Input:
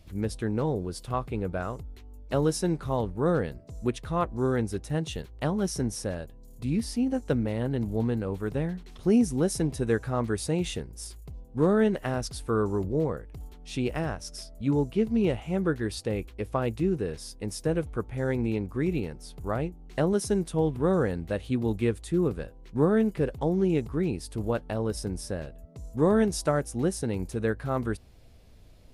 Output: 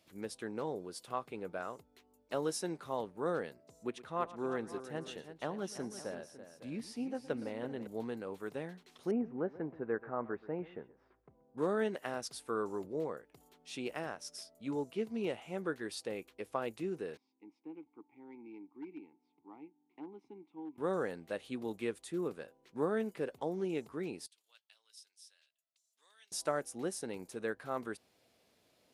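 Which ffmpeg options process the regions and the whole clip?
ffmpeg -i in.wav -filter_complex "[0:a]asettb=1/sr,asplit=3[link_01][link_02][link_03];[link_01]atrim=end=3.834[link_04];[link_02]atrim=start=3.83:end=7.87,asetpts=PTS-STARTPTS,afade=type=in:duration=0.004:curve=qsin,afade=type=out:start_time=4.036:duration=0.004:curve=qsin,highshelf=frequency=4500:gain=-9,aecho=1:1:116|333|555:0.133|0.251|0.178,atrim=end_sample=178164[link_05];[link_03]atrim=start=7.866[link_06];[link_04][link_05]acrossfade=duration=0.004:curve1=hsin:curve2=qsin[link_07];[link_07][link_06]acrossfade=duration=0.004:curve1=qsin:curve2=hsin,asettb=1/sr,asplit=3[link_08][link_09][link_10];[link_08]atrim=end=9.114[link_11];[link_09]atrim=start=9.11:end=11.58,asetpts=PTS-STARTPTS,afade=type=in:duration=0.004:curve=qsin,afade=type=out:start_time=2.466:duration=0.004:curve=qsin,lowpass=frequency=1700:width=0.5412,lowpass=frequency=1700:width=1.3066,aecho=1:1:129:0.119,atrim=end_sample=108927[link_12];[link_10]atrim=start=11.576[link_13];[link_11][link_12]acrossfade=duration=0.004:curve1=hsin:curve2=qsin[link_14];[link_14][link_13]acrossfade=duration=0.004:curve1=qsin:curve2=hsin,asettb=1/sr,asplit=3[link_15][link_16][link_17];[link_15]atrim=end=17.174[link_18];[link_16]atrim=start=17.17:end=20.78,asetpts=PTS-STARTPTS,afade=type=in:duration=0.004:curve=qsin,afade=type=out:start_time=3.606:duration=0.004:curve=qsin,asplit=3[link_19][link_20][link_21];[link_19]bandpass=frequency=300:width_type=q:width=8,volume=0dB[link_22];[link_20]bandpass=frequency=870:width_type=q:width=8,volume=-6dB[link_23];[link_21]bandpass=frequency=2240:width_type=q:width=8,volume=-9dB[link_24];[link_22][link_23][link_24]amix=inputs=3:normalize=0,volume=28dB,asoftclip=hard,volume=-28dB,adynamicsmooth=sensitivity=7.5:basefreq=3600[link_25];[link_17]atrim=start=20.776[link_26];[link_18][link_25]acrossfade=duration=0.004:curve1=hsin:curve2=qsin[link_27];[link_27][link_26]acrossfade=duration=0.004:curve1=qsin:curve2=hsin,asettb=1/sr,asplit=3[link_28][link_29][link_30];[link_28]atrim=end=24.264[link_31];[link_29]atrim=start=24.26:end=26.32,asetpts=PTS-STARTPTS,afade=type=in:duration=0.004:curve=qsin,afade=type=out:start_time=2.056:duration=0.004:curve=qsin,bandpass=frequency=3400:width_type=q:width=1.8,aderivative[link_32];[link_30]atrim=start=26.316[link_33];[link_31][link_32]acrossfade=duration=0.004:curve1=hsin:curve2=qsin[link_34];[link_34][link_33]acrossfade=duration=0.004:curve1=qsin:curve2=hsin,highpass=200,lowshelf=frequency=290:gain=-9.5,volume=-6dB" out.wav

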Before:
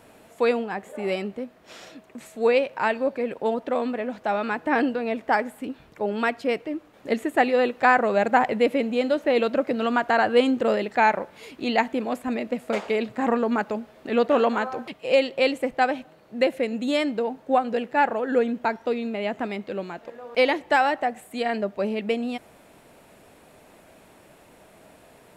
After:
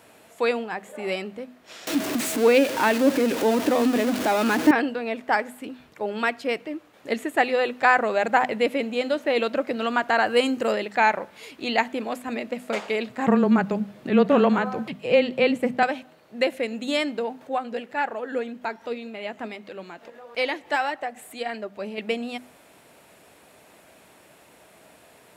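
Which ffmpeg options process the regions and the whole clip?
ffmpeg -i in.wav -filter_complex "[0:a]asettb=1/sr,asplit=3[link_01][link_02][link_03];[link_01]atrim=end=1.874[link_04];[link_02]atrim=start=1.87:end=4.71,asetpts=PTS-STARTPTS,afade=type=in:duration=0.004:curve=qsin,afade=type=out:start_time=2.836:duration=0.004:curve=qsin,aeval=exprs='val(0)+0.5*0.0531*sgn(val(0))':channel_layout=same,equalizer=frequency=290:width=2.4:gain=15[link_05];[link_03]atrim=start=4.706[link_06];[link_04][link_05]acrossfade=duration=0.004:curve1=hsin:curve2=qsin[link_07];[link_07][link_06]acrossfade=duration=0.004:curve1=qsin:curve2=hsin,asettb=1/sr,asplit=3[link_08][link_09][link_10];[link_08]atrim=end=10.264[link_11];[link_09]atrim=start=10.26:end=10.72,asetpts=PTS-STARTPTS,afade=type=in:duration=0.004:curve=qsin,afade=type=out:start_time=0.456:duration=0.004:curve=qsin,highshelf=frequency=5700:gain=8,bandreject=frequency=3500:width=7.4[link_12];[link_10]atrim=start=10.716[link_13];[link_11][link_12]acrossfade=duration=0.004:curve1=hsin:curve2=qsin[link_14];[link_14][link_13]acrossfade=duration=0.004:curve1=qsin:curve2=hsin,asettb=1/sr,asplit=3[link_15][link_16][link_17];[link_15]atrim=end=13.274[link_18];[link_16]atrim=start=13.27:end=15.83,asetpts=PTS-STARTPTS,afade=type=in:duration=0.004:curve=qsin,afade=type=out:start_time=2.556:duration=0.004:curve=qsin,equalizer=frequency=170:width=0.85:gain=14,afreqshift=-15,acrossover=split=3400[link_19][link_20];[link_20]acompressor=threshold=-48dB:ratio=4:attack=1:release=60[link_21];[link_19][link_21]amix=inputs=2:normalize=0[link_22];[link_17]atrim=start=15.826[link_23];[link_18][link_22]acrossfade=duration=0.004:curve1=hsin:curve2=qsin[link_24];[link_24][link_23]acrossfade=duration=0.004:curve1=qsin:curve2=hsin,asettb=1/sr,asplit=3[link_25][link_26][link_27];[link_25]atrim=end=17.414[link_28];[link_26]atrim=start=17.41:end=21.98,asetpts=PTS-STARTPTS,afade=type=in:duration=0.004:curve=qsin,afade=type=out:start_time=4.566:duration=0.004:curve=qsin,flanger=delay=0.4:depth=4.5:regen=73:speed=1.7:shape=triangular,acompressor=mode=upward:threshold=-37dB:ratio=2.5:attack=3.2:release=140:knee=2.83:detection=peak[link_29];[link_27]atrim=start=21.976[link_30];[link_28][link_29]acrossfade=duration=0.004:curve1=hsin:curve2=qsin[link_31];[link_31][link_30]acrossfade=duration=0.004:curve1=qsin:curve2=hsin,highpass=63,tiltshelf=frequency=1100:gain=-3,bandreject=frequency=50:width_type=h:width=6,bandreject=frequency=100:width_type=h:width=6,bandreject=frequency=150:width_type=h:width=6,bandreject=frequency=200:width_type=h:width=6,bandreject=frequency=250:width_type=h:width=6" out.wav

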